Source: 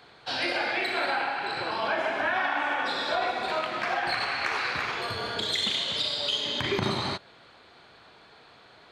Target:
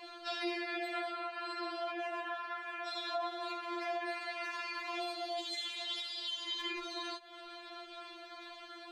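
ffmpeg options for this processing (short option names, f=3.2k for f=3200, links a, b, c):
-filter_complex "[0:a]asettb=1/sr,asplit=3[a][b][c];[a]atrim=end=4.824[d];[b]atrim=start=4.82:end=5.56,asetpts=PTS-STARTPTS,afade=t=in:d=0.004:c=qsin,afade=t=out:st=0.736:d=0.004:c=qsin,equalizer=f=1.7k:w=2.9:g=-9.5[e];[c]atrim=start=5.556[f];[d][e]acrossfade=d=0.004:c1=hsin:c2=qsin[g];[g][f]acrossfade=d=0.004:c1=qsin:c2=hsin,acompressor=threshold=-41dB:ratio=8,afftfilt=real='re*4*eq(mod(b,16),0)':imag='im*4*eq(mod(b,16),0)':win_size=2048:overlap=0.75,volume=6dB"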